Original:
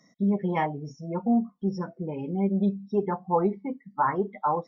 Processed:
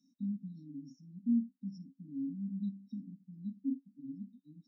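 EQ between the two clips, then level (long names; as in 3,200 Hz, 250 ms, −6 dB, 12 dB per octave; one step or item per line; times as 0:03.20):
formant filter i
linear-phase brick-wall band-stop 300–3,600 Hz
high-shelf EQ 3,300 Hz +11 dB
+1.0 dB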